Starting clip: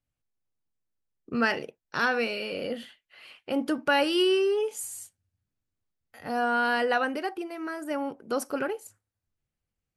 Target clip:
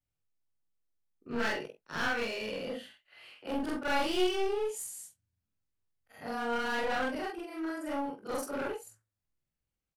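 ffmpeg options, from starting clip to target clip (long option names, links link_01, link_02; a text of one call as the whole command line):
ffmpeg -i in.wav -filter_complex "[0:a]afftfilt=real='re':imag='-im':win_size=4096:overlap=0.75,aeval=exprs='clip(val(0),-1,0.0188)':channel_layout=same,asplit=2[link_01][link_02];[link_02]adelay=19,volume=-8dB[link_03];[link_01][link_03]amix=inputs=2:normalize=0" out.wav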